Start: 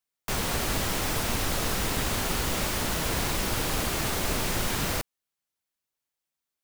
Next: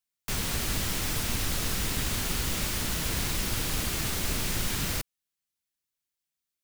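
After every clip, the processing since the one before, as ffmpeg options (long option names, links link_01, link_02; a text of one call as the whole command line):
ffmpeg -i in.wav -af "equalizer=frequency=690:width_type=o:width=2.3:gain=-8.5" out.wav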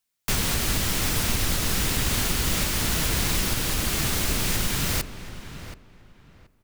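ffmpeg -i in.wav -filter_complex "[0:a]alimiter=limit=-20.5dB:level=0:latency=1:release=496,asplit=2[link_01][link_02];[link_02]adelay=727,lowpass=frequency=2500:poles=1,volume=-11.5dB,asplit=2[link_03][link_04];[link_04]adelay=727,lowpass=frequency=2500:poles=1,volume=0.23,asplit=2[link_05][link_06];[link_06]adelay=727,lowpass=frequency=2500:poles=1,volume=0.23[link_07];[link_01][link_03][link_05][link_07]amix=inputs=4:normalize=0,volume=7.5dB" out.wav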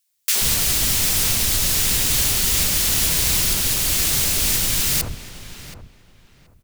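ffmpeg -i in.wav -filter_complex "[0:a]highshelf=frequency=3000:gain=10,acrossover=split=260|1300[link_01][link_02][link_03];[link_02]adelay=70[link_04];[link_01]adelay=130[link_05];[link_05][link_04][link_03]amix=inputs=3:normalize=0" out.wav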